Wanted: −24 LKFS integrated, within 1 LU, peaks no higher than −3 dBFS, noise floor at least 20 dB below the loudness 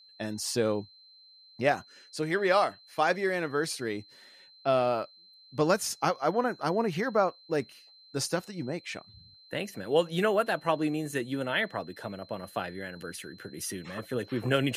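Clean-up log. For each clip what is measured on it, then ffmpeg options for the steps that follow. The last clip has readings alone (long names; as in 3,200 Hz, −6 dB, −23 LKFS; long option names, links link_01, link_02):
interfering tone 4,100 Hz; level of the tone −54 dBFS; integrated loudness −30.5 LKFS; sample peak −12.0 dBFS; target loudness −24.0 LKFS
→ -af "bandreject=frequency=4100:width=30"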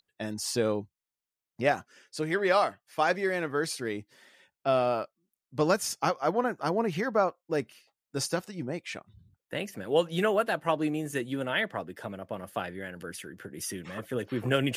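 interfering tone none found; integrated loudness −30.5 LKFS; sample peak −12.0 dBFS; target loudness −24.0 LKFS
→ -af "volume=6.5dB"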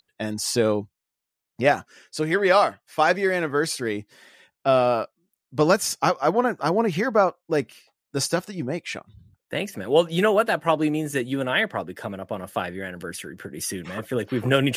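integrated loudness −24.0 LKFS; sample peak −5.5 dBFS; background noise floor −85 dBFS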